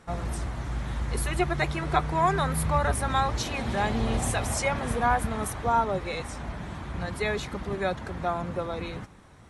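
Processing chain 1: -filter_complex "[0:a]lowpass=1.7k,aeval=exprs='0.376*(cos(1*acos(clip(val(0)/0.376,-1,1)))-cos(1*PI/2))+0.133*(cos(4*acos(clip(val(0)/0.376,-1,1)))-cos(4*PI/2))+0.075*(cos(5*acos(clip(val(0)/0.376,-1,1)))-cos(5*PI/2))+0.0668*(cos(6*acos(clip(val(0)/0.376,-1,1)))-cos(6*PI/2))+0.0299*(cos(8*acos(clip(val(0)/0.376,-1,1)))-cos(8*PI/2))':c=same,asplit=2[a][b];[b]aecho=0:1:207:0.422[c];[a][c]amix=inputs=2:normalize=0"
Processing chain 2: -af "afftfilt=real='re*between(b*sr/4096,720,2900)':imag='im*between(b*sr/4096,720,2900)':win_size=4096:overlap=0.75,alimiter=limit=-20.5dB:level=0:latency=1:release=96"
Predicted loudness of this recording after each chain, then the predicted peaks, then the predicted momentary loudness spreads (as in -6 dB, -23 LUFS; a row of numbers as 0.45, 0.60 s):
-23.5, -34.5 LUFS; -6.5, -20.5 dBFS; 9, 13 LU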